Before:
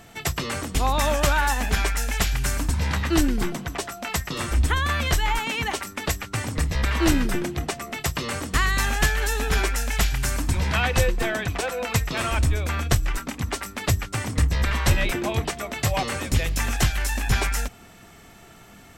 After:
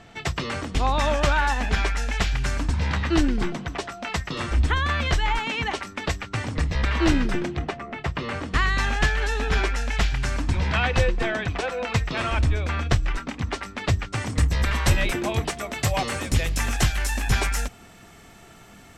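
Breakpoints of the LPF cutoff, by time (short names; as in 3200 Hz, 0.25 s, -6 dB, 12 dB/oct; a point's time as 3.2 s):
7.45 s 4900 Hz
7.87 s 1900 Hz
8.69 s 4600 Hz
14.01 s 4600 Hz
14.51 s 12000 Hz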